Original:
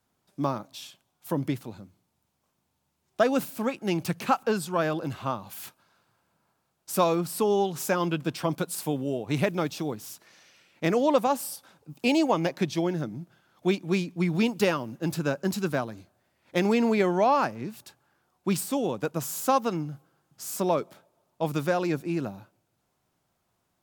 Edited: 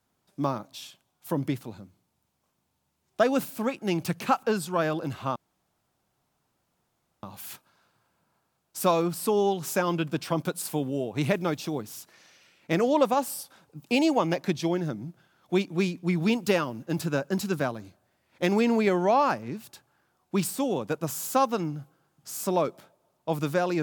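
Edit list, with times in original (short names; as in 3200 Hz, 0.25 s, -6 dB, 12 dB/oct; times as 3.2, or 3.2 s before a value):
5.36 insert room tone 1.87 s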